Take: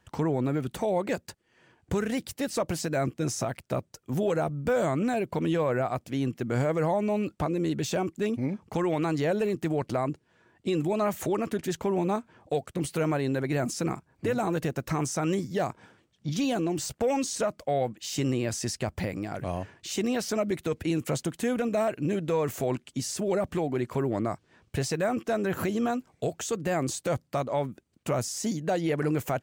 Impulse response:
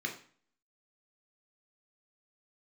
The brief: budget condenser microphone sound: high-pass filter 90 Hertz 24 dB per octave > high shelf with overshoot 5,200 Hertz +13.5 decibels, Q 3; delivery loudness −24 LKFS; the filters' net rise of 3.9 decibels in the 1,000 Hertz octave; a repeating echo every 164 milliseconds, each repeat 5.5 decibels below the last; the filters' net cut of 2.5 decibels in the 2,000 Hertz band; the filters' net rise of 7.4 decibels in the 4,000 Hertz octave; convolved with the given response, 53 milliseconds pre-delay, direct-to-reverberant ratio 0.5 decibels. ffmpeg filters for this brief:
-filter_complex "[0:a]equalizer=frequency=1000:width_type=o:gain=7,equalizer=frequency=2000:width_type=o:gain=-5.5,equalizer=frequency=4000:width_type=o:gain=7,aecho=1:1:164|328|492|656|820|984|1148:0.531|0.281|0.149|0.079|0.0419|0.0222|0.0118,asplit=2[link_01][link_02];[1:a]atrim=start_sample=2205,adelay=53[link_03];[link_02][link_03]afir=irnorm=-1:irlink=0,volume=-4.5dB[link_04];[link_01][link_04]amix=inputs=2:normalize=0,highpass=frequency=90:width=0.5412,highpass=frequency=90:width=1.3066,highshelf=frequency=5200:width_type=q:width=3:gain=13.5,volume=-5dB"

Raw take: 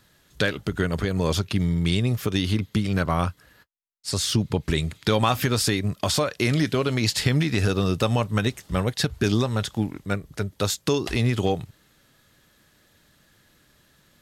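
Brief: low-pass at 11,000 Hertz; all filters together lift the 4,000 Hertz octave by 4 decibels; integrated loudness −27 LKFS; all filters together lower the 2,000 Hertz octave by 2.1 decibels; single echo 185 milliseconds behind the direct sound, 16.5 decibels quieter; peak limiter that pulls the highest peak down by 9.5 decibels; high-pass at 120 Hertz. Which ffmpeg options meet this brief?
ffmpeg -i in.wav -af "highpass=120,lowpass=11000,equalizer=frequency=2000:width_type=o:gain=-4.5,equalizer=frequency=4000:width_type=o:gain=6,alimiter=limit=-15.5dB:level=0:latency=1,aecho=1:1:185:0.15,volume=0.5dB" out.wav

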